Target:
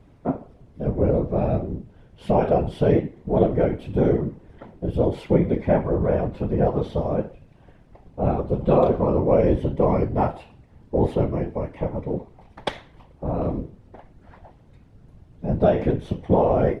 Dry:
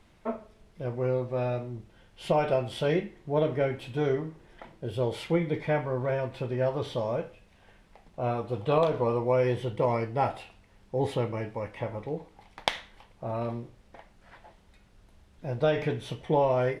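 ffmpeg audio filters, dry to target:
ffmpeg -i in.wav -af "tiltshelf=frequency=970:gain=8,afftfilt=real='hypot(re,im)*cos(2*PI*random(0))':imag='hypot(re,im)*sin(2*PI*random(1))':win_size=512:overlap=0.75,volume=8dB" out.wav

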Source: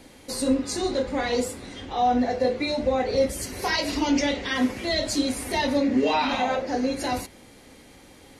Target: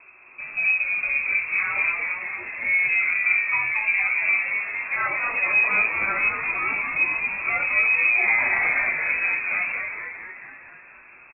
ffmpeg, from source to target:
ffmpeg -i in.wav -filter_complex "[0:a]highpass=79,asplit=2[link_01][link_02];[link_02]adelay=14,volume=-11dB[link_03];[link_01][link_03]amix=inputs=2:normalize=0,lowpass=frequency=3100:width_type=q:width=0.5098,lowpass=frequency=3100:width_type=q:width=0.6013,lowpass=frequency=3100:width_type=q:width=0.9,lowpass=frequency=3100:width_type=q:width=2.563,afreqshift=-3700,asplit=9[link_04][link_05][link_06][link_07][link_08][link_09][link_10][link_11][link_12];[link_05]adelay=169,afreqshift=-150,volume=-5dB[link_13];[link_06]adelay=338,afreqshift=-300,volume=-9.6dB[link_14];[link_07]adelay=507,afreqshift=-450,volume=-14.2dB[link_15];[link_08]adelay=676,afreqshift=-600,volume=-18.7dB[link_16];[link_09]adelay=845,afreqshift=-750,volume=-23.3dB[link_17];[link_10]adelay=1014,afreqshift=-900,volume=-27.9dB[link_18];[link_11]adelay=1183,afreqshift=-1050,volume=-32.5dB[link_19];[link_12]adelay=1352,afreqshift=-1200,volume=-37.1dB[link_20];[link_04][link_13][link_14][link_15][link_16][link_17][link_18][link_19][link_20]amix=inputs=9:normalize=0,asetrate=32667,aresample=44100" out.wav

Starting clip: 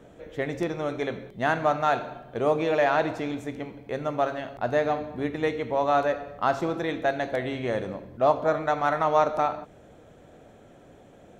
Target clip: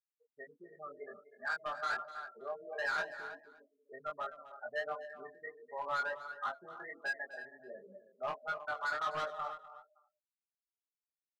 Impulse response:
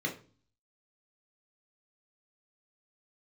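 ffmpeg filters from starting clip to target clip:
-filter_complex "[0:a]tremolo=f=1:d=0.41,afftfilt=real='re*gte(hypot(re,im),0.0891)':imag='im*gte(hypot(re,im),0.0891)':win_size=1024:overlap=0.75,bandpass=frequency=1500:width_type=q:width=4.6:csg=0,aecho=1:1:4.9:0.92,asplit=2[link_01][link_02];[link_02]adelay=320,highpass=300,lowpass=3400,asoftclip=type=hard:threshold=-27.5dB,volume=-15dB[link_03];[link_01][link_03]amix=inputs=2:normalize=0,volume=33dB,asoftclip=hard,volume=-33dB,aemphasis=mode=reproduction:type=50kf,asplit=2[link_04][link_05];[link_05]aecho=0:1:250:0.168[link_06];[link_04][link_06]amix=inputs=2:normalize=0,flanger=delay=19.5:depth=3.7:speed=1.4,volume=4.5dB"

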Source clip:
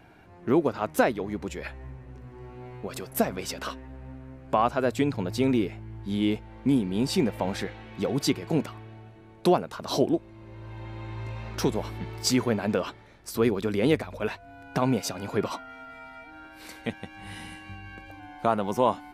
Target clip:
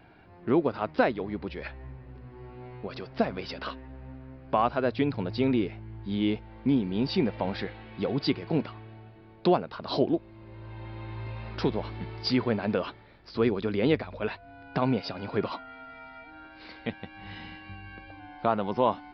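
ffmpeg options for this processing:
ffmpeg -i in.wav -af "aresample=11025,aresample=44100,volume=-1.5dB" out.wav

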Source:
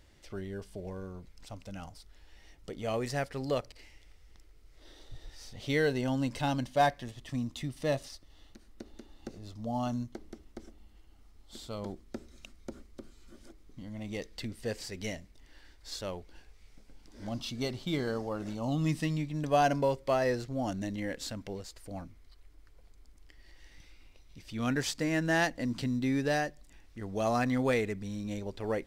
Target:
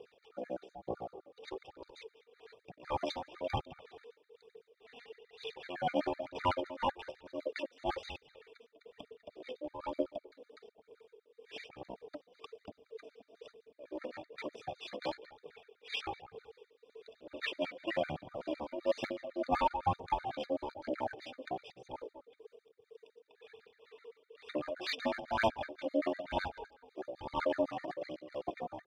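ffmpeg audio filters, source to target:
ffmpeg -i in.wav -filter_complex "[0:a]tremolo=f=2:d=0.78,aeval=exprs='val(0)+0.000251*(sin(2*PI*50*n/s)+sin(2*PI*2*50*n/s)/2+sin(2*PI*3*50*n/s)/3+sin(2*PI*4*50*n/s)/4+sin(2*PI*5*50*n/s)/5)':channel_layout=same,equalizer=frequency=4600:width_type=o:width=1.2:gain=10,asplit=2[link_01][link_02];[link_02]adelay=205,lowpass=frequency=4100:poles=1,volume=-15dB,asplit=2[link_03][link_04];[link_04]adelay=205,lowpass=frequency=4100:poles=1,volume=0.23[link_05];[link_01][link_03][link_05]amix=inputs=3:normalize=0,aeval=exprs='val(0)*sin(2*PI*690*n/s)':channel_layout=same,highpass=frequency=160:poles=1,aphaser=in_gain=1:out_gain=1:delay=2.8:decay=0.58:speed=1.1:type=triangular,asetrate=28595,aresample=44100,atempo=1.54221,volume=22.5dB,asoftclip=hard,volume=-22.5dB,equalizer=frequency=500:width_type=o:width=1:gain=5,equalizer=frequency=1000:width_type=o:width=1:gain=4,equalizer=frequency=8000:width_type=o:width=1:gain=-4,afftfilt=real='re*gt(sin(2*PI*7.9*pts/sr)*(1-2*mod(floor(b*sr/1024/1200),2)),0)':imag='im*gt(sin(2*PI*7.9*pts/sr)*(1-2*mod(floor(b*sr/1024/1200),2)),0)':win_size=1024:overlap=0.75" out.wav

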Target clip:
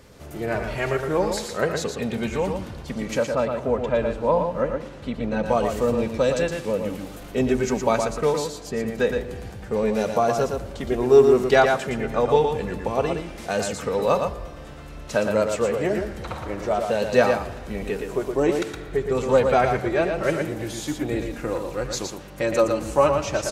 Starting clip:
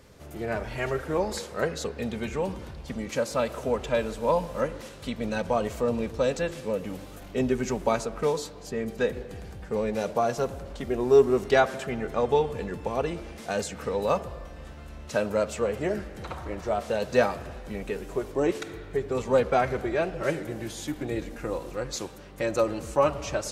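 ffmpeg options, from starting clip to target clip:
ffmpeg -i in.wav -filter_complex "[0:a]asettb=1/sr,asplit=3[link_01][link_02][link_03];[link_01]atrim=end=3.234[link_04];[link_02]atrim=start=3.23:end=5.46,asetpts=PTS-STARTPTS,afade=type=in:duration=0.004:curve=qsin,afade=type=out:start_time=2.226:duration=0.004:curve=qsin,lowpass=frequency=1500:poles=1[link_05];[link_03]atrim=start=5.456[link_06];[link_04][link_05]acrossfade=duration=0.004:curve1=hsin:curve2=qsin[link_07];[link_07][link_06]acrossfade=duration=0.004:curve1=qsin:curve2=hsin,aecho=1:1:116:0.531,volume=4dB" out.wav

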